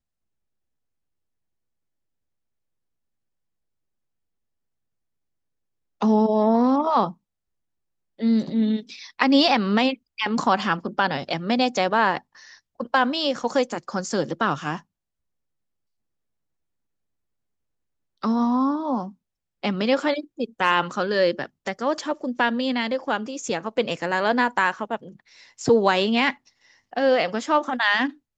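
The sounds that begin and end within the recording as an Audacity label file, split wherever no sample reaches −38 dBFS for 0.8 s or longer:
6.010000	7.120000	sound
8.190000	14.800000	sound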